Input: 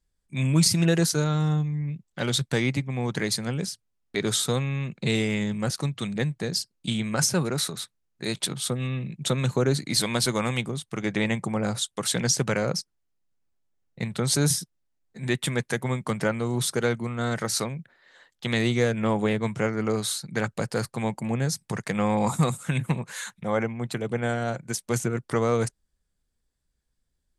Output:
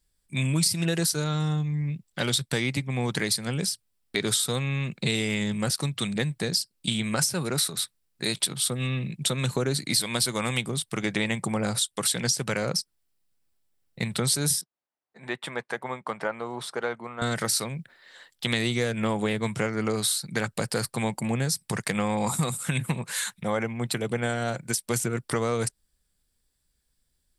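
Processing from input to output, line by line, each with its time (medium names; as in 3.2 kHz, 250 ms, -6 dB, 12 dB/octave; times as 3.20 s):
14.61–17.22 s: band-pass filter 880 Hz, Q 1.2
whole clip: treble shelf 3 kHz +10.5 dB; compression 3:1, threshold -25 dBFS; peaking EQ 6.5 kHz -8.5 dB 0.2 oct; trim +1.5 dB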